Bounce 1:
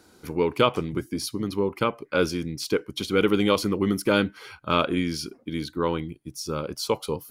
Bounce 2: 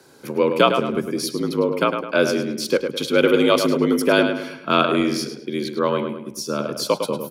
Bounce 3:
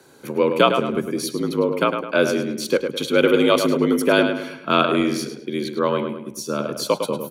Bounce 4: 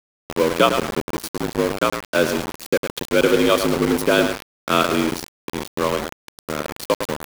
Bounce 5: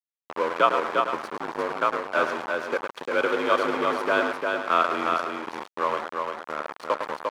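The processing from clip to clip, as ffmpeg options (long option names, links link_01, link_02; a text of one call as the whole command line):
ffmpeg -i in.wav -filter_complex "[0:a]asplit=2[link_01][link_02];[link_02]adelay=105,lowpass=frequency=3500:poles=1,volume=-6.5dB,asplit=2[link_03][link_04];[link_04]adelay=105,lowpass=frequency=3500:poles=1,volume=0.43,asplit=2[link_05][link_06];[link_06]adelay=105,lowpass=frequency=3500:poles=1,volume=0.43,asplit=2[link_07][link_08];[link_08]adelay=105,lowpass=frequency=3500:poles=1,volume=0.43,asplit=2[link_09][link_10];[link_10]adelay=105,lowpass=frequency=3500:poles=1,volume=0.43[link_11];[link_01][link_03][link_05][link_07][link_09][link_11]amix=inputs=6:normalize=0,afreqshift=59,volume=4.5dB" out.wav
ffmpeg -i in.wav -af "bandreject=frequency=5100:width=6" out.wav
ffmpeg -i in.wav -af "aeval=exprs='val(0)*gte(abs(val(0)),0.1)':channel_layout=same" out.wav
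ffmpeg -i in.wav -af "bandpass=frequency=1100:width_type=q:width=1.3:csg=0,aecho=1:1:350:0.631" out.wav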